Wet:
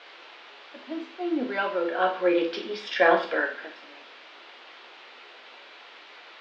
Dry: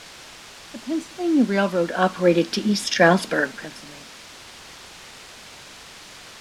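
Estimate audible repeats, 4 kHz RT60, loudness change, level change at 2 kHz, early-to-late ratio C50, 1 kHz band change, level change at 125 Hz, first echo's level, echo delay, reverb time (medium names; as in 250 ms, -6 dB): no echo, 0.40 s, -5.0 dB, -3.5 dB, 9.5 dB, -2.5 dB, under -20 dB, no echo, no echo, 0.40 s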